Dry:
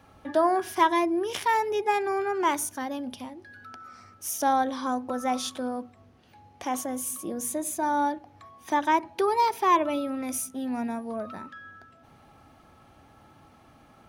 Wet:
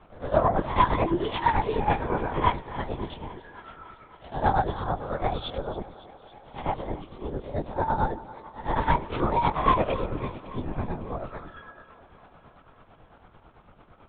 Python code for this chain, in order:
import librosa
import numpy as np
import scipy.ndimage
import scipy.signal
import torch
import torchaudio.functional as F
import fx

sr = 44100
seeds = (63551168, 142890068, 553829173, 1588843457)

p1 = fx.spec_swells(x, sr, rise_s=0.44)
p2 = fx.peak_eq(p1, sr, hz=2300.0, db=-3.0, octaves=2.0)
p3 = fx.hum_notches(p2, sr, base_hz=50, count=8)
p4 = np.clip(10.0 ** (16.5 / 20.0) * p3, -1.0, 1.0) / 10.0 ** (16.5 / 20.0)
p5 = p3 + (p4 * 10.0 ** (-3.5 / 20.0))
p6 = fx.tremolo_shape(p5, sr, shape='triangle', hz=9.0, depth_pct=80)
p7 = fx.lpc_vocoder(p6, sr, seeds[0], excitation='whisper', order=10)
y = fx.echo_thinned(p7, sr, ms=278, feedback_pct=73, hz=170.0, wet_db=-17.5)